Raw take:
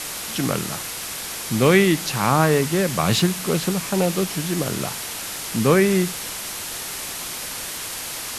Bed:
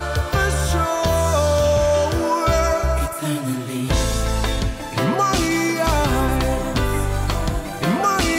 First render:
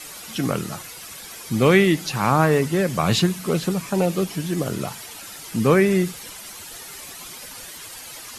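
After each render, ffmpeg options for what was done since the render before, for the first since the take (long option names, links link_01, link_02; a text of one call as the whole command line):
ffmpeg -i in.wav -af "afftdn=noise_reduction=11:noise_floor=-31" out.wav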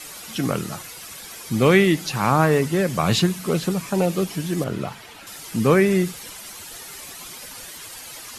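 ffmpeg -i in.wav -filter_complex "[0:a]asettb=1/sr,asplit=3[link_01][link_02][link_03];[link_01]atrim=end=4.644[link_04];[link_02]atrim=start=4.64:end=5.27,asetpts=PTS-STARTPTS,afade=type=in:duration=0.004:curve=qsin,afade=type=out:start_time=0.626:duration=0.004:curve=qsin,acrossover=split=3900[link_05][link_06];[link_06]acompressor=threshold=-50dB:ratio=4:attack=1:release=60[link_07];[link_05][link_07]amix=inputs=2:normalize=0[link_08];[link_03]atrim=start=5.266[link_09];[link_04][link_08]acrossfade=duration=0.004:curve1=hsin:curve2=qsin[link_10];[link_10][link_09]acrossfade=duration=0.004:curve1=qsin:curve2=hsin" out.wav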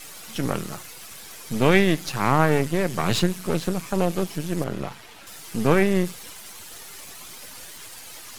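ffmpeg -i in.wav -af "aeval=exprs='if(lt(val(0),0),0.251*val(0),val(0))':channel_layout=same" out.wav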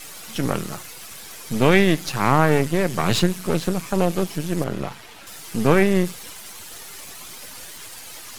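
ffmpeg -i in.wav -af "volume=2.5dB,alimiter=limit=-2dB:level=0:latency=1" out.wav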